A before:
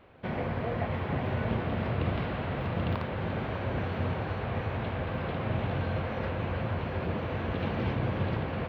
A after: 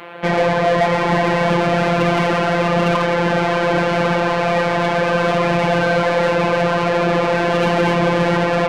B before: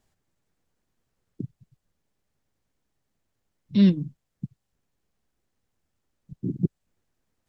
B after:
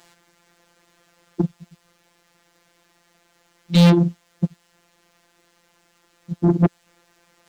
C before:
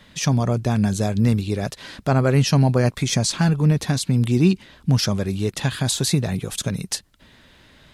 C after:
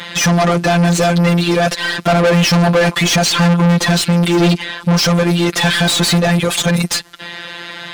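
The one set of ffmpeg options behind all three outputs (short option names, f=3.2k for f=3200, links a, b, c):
-filter_complex "[0:a]afftfilt=real='hypot(re,im)*cos(PI*b)':imag='0':win_size=1024:overlap=0.75,asplit=2[a][b];[b]highpass=f=720:p=1,volume=36dB,asoftclip=type=tanh:threshold=-4dB[c];[a][c]amix=inputs=2:normalize=0,lowpass=f=4.3k:p=1,volume=-6dB"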